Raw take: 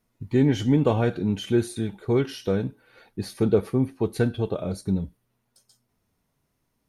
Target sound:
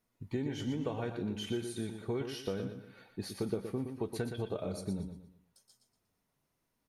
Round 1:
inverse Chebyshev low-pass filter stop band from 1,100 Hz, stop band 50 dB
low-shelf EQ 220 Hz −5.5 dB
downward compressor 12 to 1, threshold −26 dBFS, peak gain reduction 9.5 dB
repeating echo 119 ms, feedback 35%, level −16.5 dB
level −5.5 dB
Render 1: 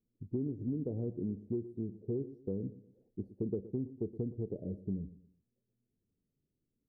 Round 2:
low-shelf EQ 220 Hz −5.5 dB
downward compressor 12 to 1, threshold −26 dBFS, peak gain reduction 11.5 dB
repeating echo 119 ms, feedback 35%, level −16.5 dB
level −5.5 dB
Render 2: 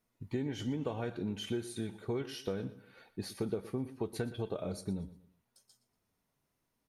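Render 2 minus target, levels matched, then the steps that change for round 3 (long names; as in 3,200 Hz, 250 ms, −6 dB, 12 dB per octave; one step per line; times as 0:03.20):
echo-to-direct −8.5 dB
change: repeating echo 119 ms, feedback 35%, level −8 dB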